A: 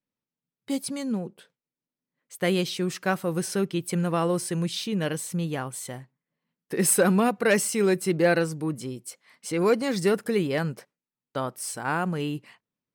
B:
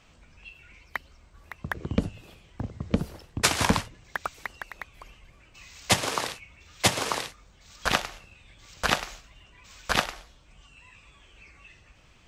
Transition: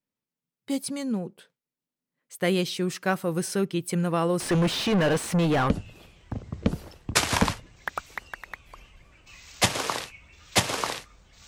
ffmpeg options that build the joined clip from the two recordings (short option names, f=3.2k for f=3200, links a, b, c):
-filter_complex "[0:a]asettb=1/sr,asplit=3[a][b][c];[a]atrim=end=4.404[d];[b]atrim=start=4.4:end=5.7,asetpts=PTS-STARTPTS,afade=t=in:d=0.004:c=qsin,afade=t=out:st=1.296:d=0.004:c=qsin,asplit=2[e][f];[f]highpass=f=720:p=1,volume=31dB,asoftclip=type=tanh:threshold=-14.5dB[g];[e][g]amix=inputs=2:normalize=0,lowpass=f=1.5k:p=1,volume=-6dB[h];[c]atrim=start=5.696[i];[d][h]acrossfade=d=0.004:c1=hsin:c2=qsin[j];[j][i]acrossfade=d=0.004:c1=qsin:c2=hsin,apad=whole_dur=11.47,atrim=end=11.47,atrim=end=5.702[k];[1:a]atrim=start=1.978:end=7.75[l];[k][l]acrossfade=d=0.004:c1=hsin:c2=hsin"